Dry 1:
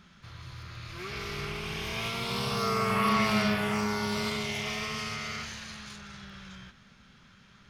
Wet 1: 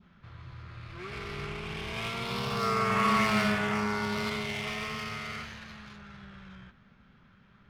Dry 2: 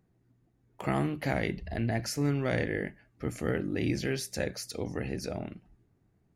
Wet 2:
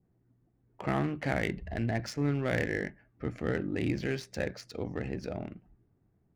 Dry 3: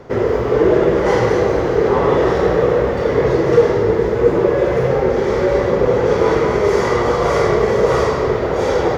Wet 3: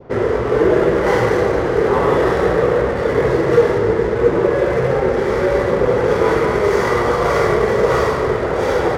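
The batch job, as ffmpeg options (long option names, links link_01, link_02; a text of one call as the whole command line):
ffmpeg -i in.wav -af "adynamicequalizer=threshold=0.0141:dfrequency=1600:dqfactor=1.4:tfrequency=1600:tqfactor=1.4:attack=5:release=100:ratio=0.375:range=2:mode=boostabove:tftype=bell,adynamicsmooth=sensitivity=7:basefreq=2200,volume=-1dB" out.wav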